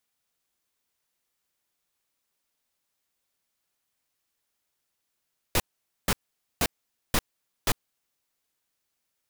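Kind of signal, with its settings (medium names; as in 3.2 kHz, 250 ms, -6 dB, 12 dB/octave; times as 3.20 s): noise bursts pink, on 0.05 s, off 0.48 s, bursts 5, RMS -22.5 dBFS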